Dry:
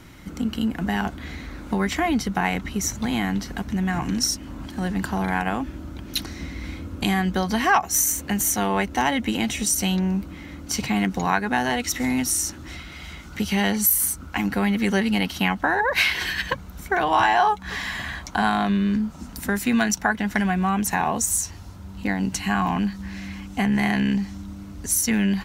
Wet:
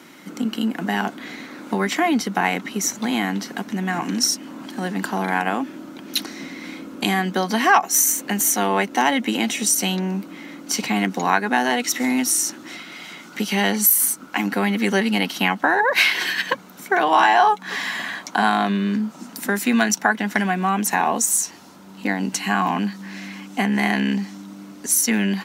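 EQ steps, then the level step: high-pass 210 Hz 24 dB/octave; +3.5 dB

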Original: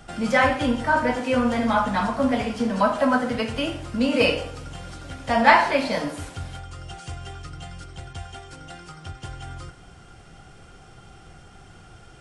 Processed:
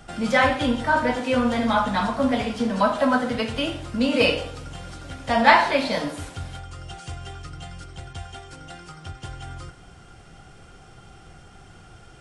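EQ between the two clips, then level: dynamic bell 3.7 kHz, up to +7 dB, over -51 dBFS, Q 4.2; 0.0 dB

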